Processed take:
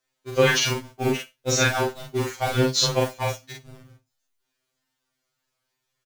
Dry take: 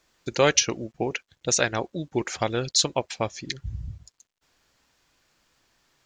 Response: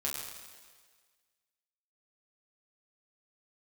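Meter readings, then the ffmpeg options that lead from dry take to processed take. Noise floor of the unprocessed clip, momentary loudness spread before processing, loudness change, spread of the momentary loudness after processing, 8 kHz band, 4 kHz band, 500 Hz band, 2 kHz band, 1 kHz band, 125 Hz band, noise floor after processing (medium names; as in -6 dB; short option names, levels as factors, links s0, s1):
-78 dBFS, 14 LU, +2.5 dB, 10 LU, -2.0 dB, +2.0 dB, +2.5 dB, +4.0 dB, +2.5 dB, +6.0 dB, -80 dBFS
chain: -filter_complex "[0:a]aeval=exprs='val(0)+0.5*0.0708*sgn(val(0))':c=same,agate=range=0.00282:threshold=0.0708:ratio=16:detection=peak,asplit=2[s0][s1];[s1]adelay=42,volume=0.794[s2];[s0][s2]amix=inputs=2:normalize=0,asplit=2[s3][s4];[1:a]atrim=start_sample=2205,atrim=end_sample=4410[s5];[s4][s5]afir=irnorm=-1:irlink=0,volume=0.158[s6];[s3][s6]amix=inputs=2:normalize=0,acrossover=split=5800[s7][s8];[s8]acompressor=threshold=0.0398:ratio=4:attack=1:release=60[s9];[s7][s9]amix=inputs=2:normalize=0,aecho=1:1:62|124:0.0794|0.0135,afftfilt=real='re*2.45*eq(mod(b,6),0)':imag='im*2.45*eq(mod(b,6),0)':win_size=2048:overlap=0.75"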